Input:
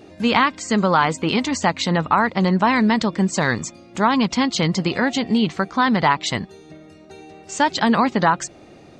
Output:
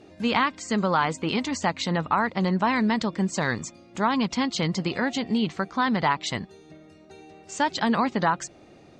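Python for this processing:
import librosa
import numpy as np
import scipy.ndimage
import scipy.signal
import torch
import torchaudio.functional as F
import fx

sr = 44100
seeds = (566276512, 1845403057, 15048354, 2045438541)

y = scipy.signal.sosfilt(scipy.signal.butter(2, 11000.0, 'lowpass', fs=sr, output='sos'), x)
y = y * librosa.db_to_amplitude(-6.0)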